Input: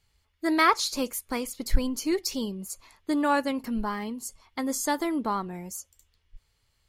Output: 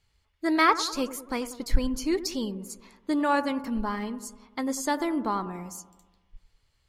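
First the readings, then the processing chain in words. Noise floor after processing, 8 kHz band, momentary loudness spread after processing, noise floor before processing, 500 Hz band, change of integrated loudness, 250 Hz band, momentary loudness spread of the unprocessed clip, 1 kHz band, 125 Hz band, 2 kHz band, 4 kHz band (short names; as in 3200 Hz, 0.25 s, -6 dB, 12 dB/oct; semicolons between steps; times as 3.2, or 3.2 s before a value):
-71 dBFS, -3.0 dB, 17 LU, -72 dBFS, 0.0 dB, 0.0 dB, +0.5 dB, 15 LU, 0.0 dB, 0.0 dB, 0.0 dB, -1.0 dB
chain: high shelf 11000 Hz -11.5 dB; on a send: analogue delay 97 ms, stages 1024, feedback 58%, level -13.5 dB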